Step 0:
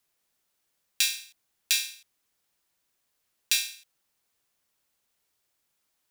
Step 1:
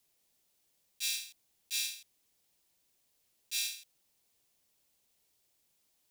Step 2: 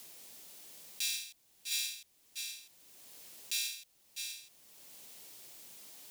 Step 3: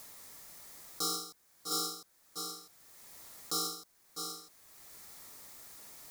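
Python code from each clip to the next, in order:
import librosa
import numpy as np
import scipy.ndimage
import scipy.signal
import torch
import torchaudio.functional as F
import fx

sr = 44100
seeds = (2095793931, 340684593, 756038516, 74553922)

y1 = fx.peak_eq(x, sr, hz=1400.0, db=-8.5, octaves=1.2)
y1 = fx.auto_swell(y1, sr, attack_ms=155.0)
y1 = y1 * 10.0 ** (2.5 / 20.0)
y2 = y1 + 10.0 ** (-14.0 / 20.0) * np.pad(y1, (int(649 * sr / 1000.0), 0))[:len(y1)]
y2 = fx.band_squash(y2, sr, depth_pct=70)
y2 = y2 * 10.0 ** (5.0 / 20.0)
y3 = fx.band_shuffle(y2, sr, order='4123')
y3 = y3 * 10.0 ** (1.0 / 20.0)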